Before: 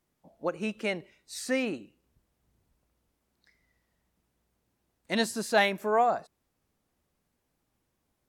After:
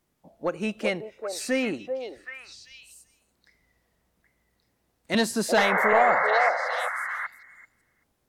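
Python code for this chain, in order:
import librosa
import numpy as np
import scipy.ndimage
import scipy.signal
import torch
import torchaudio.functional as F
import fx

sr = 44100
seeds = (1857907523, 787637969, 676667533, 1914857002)

p1 = 10.0 ** (-18.5 / 20.0) * np.tanh(x / 10.0 ** (-18.5 / 20.0))
p2 = fx.spec_paint(p1, sr, seeds[0], shape='noise', start_s=5.57, length_s=0.93, low_hz=480.0, high_hz=2200.0, level_db=-28.0)
p3 = p2 + fx.echo_stepped(p2, sr, ms=386, hz=600.0, octaves=1.4, feedback_pct=70, wet_db=-2, dry=0)
p4 = fx.band_squash(p3, sr, depth_pct=70, at=(5.14, 5.93))
y = p4 * librosa.db_to_amplitude(4.0)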